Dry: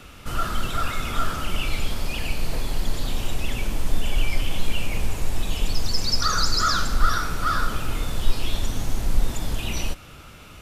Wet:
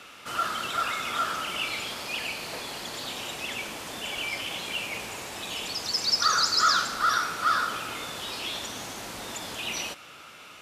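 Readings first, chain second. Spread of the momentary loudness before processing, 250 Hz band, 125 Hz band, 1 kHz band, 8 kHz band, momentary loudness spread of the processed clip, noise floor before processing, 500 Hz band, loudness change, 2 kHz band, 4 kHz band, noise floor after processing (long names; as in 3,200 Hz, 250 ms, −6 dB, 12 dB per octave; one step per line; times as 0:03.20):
8 LU, −9.0 dB, −19.5 dB, +0.5 dB, −0.5 dB, 14 LU, −44 dBFS, −3.0 dB, −1.0 dB, +1.0 dB, +1.0 dB, −48 dBFS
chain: meter weighting curve A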